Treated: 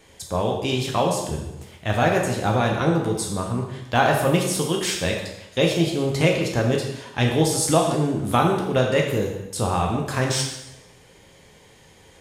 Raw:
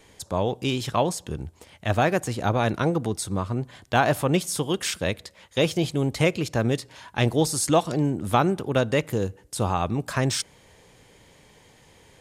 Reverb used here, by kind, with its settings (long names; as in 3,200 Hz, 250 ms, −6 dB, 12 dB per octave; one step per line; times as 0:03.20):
dense smooth reverb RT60 0.9 s, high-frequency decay 0.95×, DRR 0 dB